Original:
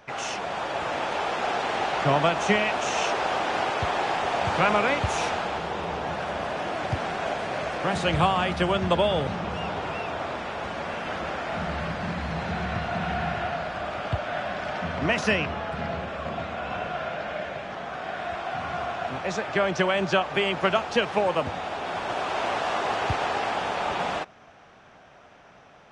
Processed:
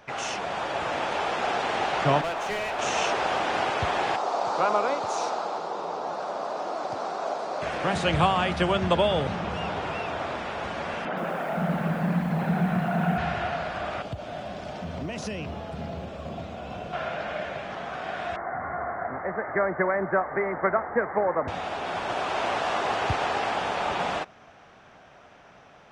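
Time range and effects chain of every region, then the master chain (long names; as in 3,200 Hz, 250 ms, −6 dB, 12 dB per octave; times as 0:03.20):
0:02.21–0:02.79: high-pass filter 370 Hz + gain into a clipping stage and back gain 26 dB + high-shelf EQ 3,500 Hz −8 dB
0:04.16–0:07.62: band-pass filter 350–7,200 Hz + flat-topped bell 2,300 Hz −12 dB 1.3 octaves
0:11.05–0:13.18: spectral envelope exaggerated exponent 1.5 + low shelf with overshoot 120 Hz −11.5 dB, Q 3 + feedback echo at a low word length 119 ms, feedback 55%, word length 8 bits, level −7.5 dB
0:14.02–0:16.93: parametric band 1,600 Hz −12.5 dB 2 octaves + downward compressor 4 to 1, threshold −29 dBFS + floating-point word with a short mantissa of 6 bits
0:18.36–0:21.48: Chebyshev low-pass filter 2,100 Hz, order 8 + dynamic equaliser 140 Hz, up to −6 dB, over −44 dBFS, Q 1.1
whole clip: no processing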